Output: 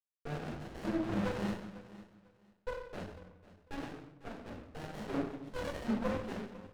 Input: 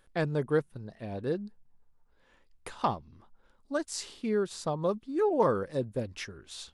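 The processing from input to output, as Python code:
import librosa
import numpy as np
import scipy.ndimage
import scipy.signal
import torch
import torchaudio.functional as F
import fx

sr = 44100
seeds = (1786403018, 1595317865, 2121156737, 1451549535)

p1 = fx.octave_divider(x, sr, octaves=1, level_db=0.0)
p2 = fx.highpass(p1, sr, hz=110.0, slope=6)
p3 = fx.high_shelf(p2, sr, hz=5900.0, db=-5.0)
p4 = fx.over_compress(p3, sr, threshold_db=-39.0, ratio=-1.0)
p5 = fx.formant_shift(p4, sr, semitones=4)
p6 = fx.rotary_switch(p5, sr, hz=1.2, then_hz=7.5, switch_at_s=2.45)
p7 = fx.spec_topn(p6, sr, count=1)
p8 = fx.quant_dither(p7, sr, seeds[0], bits=8, dither='none')
p9 = fx.filter_lfo_bandpass(p8, sr, shape='saw_up', hz=1.2, low_hz=540.0, high_hz=3400.0, q=0.71)
p10 = p9 + fx.echo_feedback(p9, sr, ms=497, feedback_pct=22, wet_db=-17.5, dry=0)
p11 = fx.room_shoebox(p10, sr, seeds[1], volume_m3=200.0, walls='mixed', distance_m=4.7)
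p12 = fx.running_max(p11, sr, window=33)
y = p12 * librosa.db_to_amplitude(6.5)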